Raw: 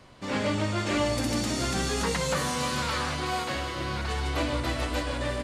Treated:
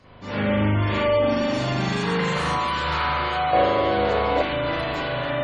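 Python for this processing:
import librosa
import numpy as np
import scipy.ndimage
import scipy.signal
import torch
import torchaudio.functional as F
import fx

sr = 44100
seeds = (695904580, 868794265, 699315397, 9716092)

p1 = fx.low_shelf(x, sr, hz=77.0, db=2.5)
p2 = fx.rev_spring(p1, sr, rt60_s=1.8, pass_ms=(39,), chirp_ms=45, drr_db=-9.5)
p3 = 10.0 ** (-18.0 / 20.0) * np.tanh(p2 / 10.0 ** (-18.0 / 20.0))
p4 = p2 + (p3 * librosa.db_to_amplitude(-5.0))
p5 = fx.spec_gate(p4, sr, threshold_db=-30, keep='strong')
p6 = fx.peak_eq(p5, sr, hz=520.0, db=15.0, octaves=0.82, at=(3.53, 4.42))
y = p6 * librosa.db_to_amplitude(-6.5)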